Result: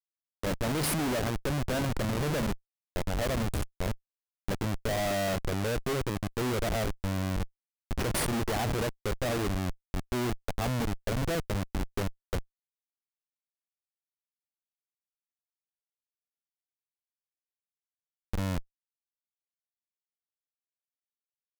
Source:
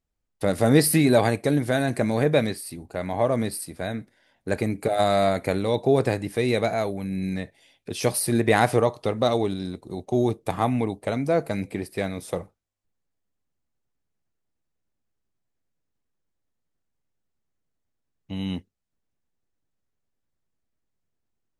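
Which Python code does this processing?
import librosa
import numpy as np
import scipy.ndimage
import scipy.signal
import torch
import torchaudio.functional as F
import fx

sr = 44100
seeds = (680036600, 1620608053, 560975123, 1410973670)

y = fx.schmitt(x, sr, flips_db=-25.0)
y = y * librosa.db_to_amplitude(-2.5)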